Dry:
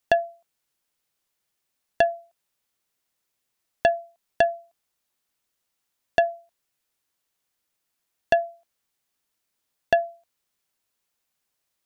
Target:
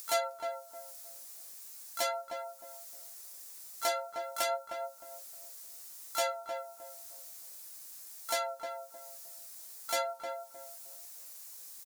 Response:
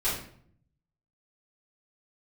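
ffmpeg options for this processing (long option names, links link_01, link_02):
-filter_complex "[0:a]equalizer=frequency=3200:width=3.1:gain=-8.5,acontrast=34,asoftclip=type=tanh:threshold=-27dB,acompressor=mode=upward:threshold=-44dB:ratio=2.5,bass=frequency=250:gain=-14,treble=frequency=4000:gain=14,asplit=4[link_01][link_02][link_03][link_04];[link_02]asetrate=35002,aresample=44100,atempo=1.25992,volume=-8dB[link_05];[link_03]asetrate=58866,aresample=44100,atempo=0.749154,volume=-11dB[link_06];[link_04]asetrate=88200,aresample=44100,atempo=0.5,volume=-6dB[link_07];[link_01][link_05][link_06][link_07]amix=inputs=4:normalize=0,flanger=delay=9.3:depth=8.4:regen=32:speed=0.39:shape=triangular,asplit=2[link_08][link_09];[link_09]adelay=309,lowpass=frequency=1000:poles=1,volume=-4dB,asplit=2[link_10][link_11];[link_11]adelay=309,lowpass=frequency=1000:poles=1,volume=0.32,asplit=2[link_12][link_13];[link_13]adelay=309,lowpass=frequency=1000:poles=1,volume=0.32,asplit=2[link_14][link_15];[link_15]adelay=309,lowpass=frequency=1000:poles=1,volume=0.32[link_16];[link_08][link_10][link_12][link_14][link_16]amix=inputs=5:normalize=0"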